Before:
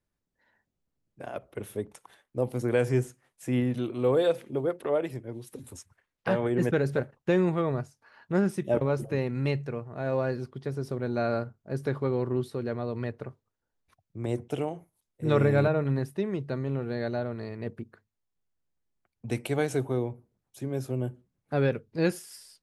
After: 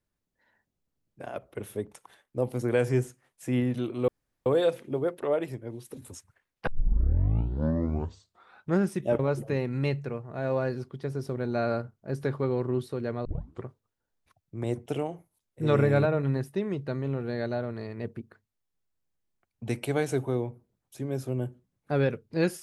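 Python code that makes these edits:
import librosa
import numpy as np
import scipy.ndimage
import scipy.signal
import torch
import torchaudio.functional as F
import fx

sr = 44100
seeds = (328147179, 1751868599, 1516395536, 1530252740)

y = fx.edit(x, sr, fx.insert_room_tone(at_s=4.08, length_s=0.38),
    fx.tape_start(start_s=6.29, length_s=2.15),
    fx.tape_start(start_s=12.87, length_s=0.41), tone=tone)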